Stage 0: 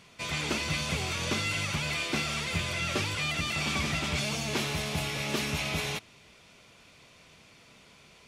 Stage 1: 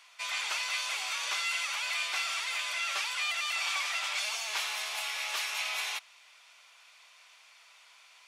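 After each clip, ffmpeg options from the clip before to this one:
-af "highpass=f=830:w=0.5412,highpass=f=830:w=1.3066"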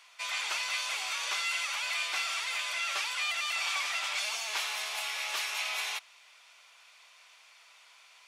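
-af "lowshelf=f=190:g=11,acontrast=35,volume=0.531"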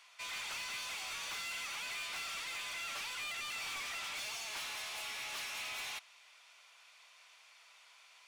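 -af "asoftclip=type=tanh:threshold=0.0178,volume=0.668"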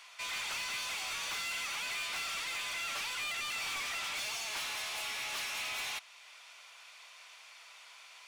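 -af "alimiter=level_in=7.5:limit=0.0631:level=0:latency=1:release=353,volume=0.133,volume=2.24"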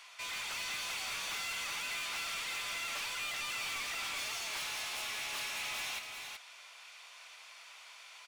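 -af "asoftclip=type=tanh:threshold=0.0168,aecho=1:1:379:0.531"

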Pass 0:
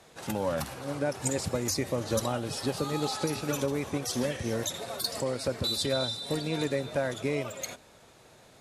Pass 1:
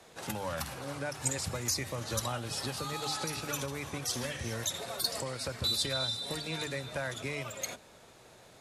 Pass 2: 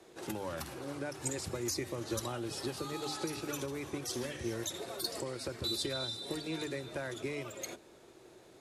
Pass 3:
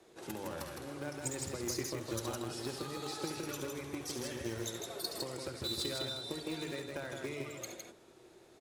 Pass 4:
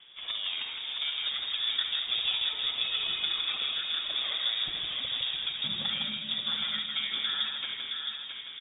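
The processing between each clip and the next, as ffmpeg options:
-filter_complex "[0:a]bandreject=f=50:t=h:w=6,bandreject=f=100:t=h:w=6,bandreject=f=150:t=h:w=6,bandreject=f=200:t=h:w=6,bandreject=f=250:t=h:w=6,bandreject=f=300:t=h:w=6,acrossover=split=140|860|5000[s0][s1][s2][s3];[s1]acompressor=threshold=0.00891:ratio=6[s4];[s0][s4][s2][s3]amix=inputs=4:normalize=0"
-af "equalizer=f=350:w=2.6:g=15,volume=0.531"
-filter_complex "[0:a]asplit=2[s0][s1];[s1]acrusher=bits=4:mix=0:aa=0.000001,volume=0.251[s2];[s0][s2]amix=inputs=2:normalize=0,aecho=1:1:69.97|160.3:0.316|0.631,volume=0.631"
-filter_complex "[0:a]asplit=2[s0][s1];[s1]adelay=667,lowpass=f=3000:p=1,volume=0.631,asplit=2[s2][s3];[s3]adelay=667,lowpass=f=3000:p=1,volume=0.53,asplit=2[s4][s5];[s5]adelay=667,lowpass=f=3000:p=1,volume=0.53,asplit=2[s6][s7];[s7]adelay=667,lowpass=f=3000:p=1,volume=0.53,asplit=2[s8][s9];[s9]adelay=667,lowpass=f=3000:p=1,volume=0.53,asplit=2[s10][s11];[s11]adelay=667,lowpass=f=3000:p=1,volume=0.53,asplit=2[s12][s13];[s13]adelay=667,lowpass=f=3000:p=1,volume=0.53[s14];[s0][s2][s4][s6][s8][s10][s12][s14]amix=inputs=8:normalize=0,lowpass=f=3200:t=q:w=0.5098,lowpass=f=3200:t=q:w=0.6013,lowpass=f=3200:t=q:w=0.9,lowpass=f=3200:t=q:w=2.563,afreqshift=-3800,volume=2.37"

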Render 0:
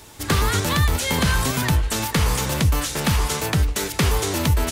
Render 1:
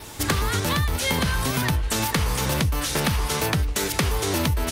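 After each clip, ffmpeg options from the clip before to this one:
-af "adynamicequalizer=threshold=0.00562:dfrequency=7300:dqfactor=4.3:tfrequency=7300:tqfactor=4.3:attack=5:release=100:ratio=0.375:range=3:mode=cutabove:tftype=bell,acompressor=threshold=0.0562:ratio=10,volume=1.88"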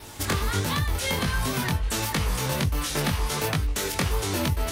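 -af "flanger=delay=19.5:depth=3.3:speed=1.4"

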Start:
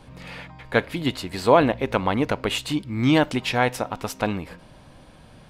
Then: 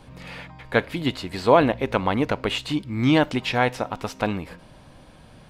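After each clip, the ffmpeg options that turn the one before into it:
-filter_complex "[0:a]acrossover=split=5900[s0][s1];[s1]acompressor=threshold=0.00447:ratio=4:attack=1:release=60[s2];[s0][s2]amix=inputs=2:normalize=0"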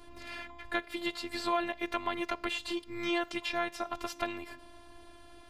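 -filter_complex "[0:a]acrossover=split=550|1200[s0][s1][s2];[s0]acompressor=threshold=0.02:ratio=4[s3];[s1]acompressor=threshold=0.02:ratio=4[s4];[s2]acompressor=threshold=0.0316:ratio=4[s5];[s3][s4][s5]amix=inputs=3:normalize=0,afftfilt=real='hypot(re,im)*cos(PI*b)':imag='0':win_size=512:overlap=0.75"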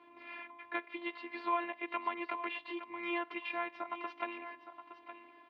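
-af "highpass=300,equalizer=f=310:t=q:w=4:g=6,equalizer=f=1000:t=q:w=4:g=8,equalizer=f=2300:t=q:w=4:g=8,lowpass=f=3100:w=0.5412,lowpass=f=3100:w=1.3066,aecho=1:1:866:0.266,volume=0.422"

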